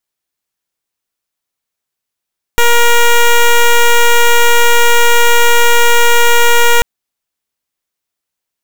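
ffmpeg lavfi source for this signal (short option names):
-f lavfi -i "aevalsrc='0.473*(2*lt(mod(473*t,1),0.1)-1)':d=4.24:s=44100"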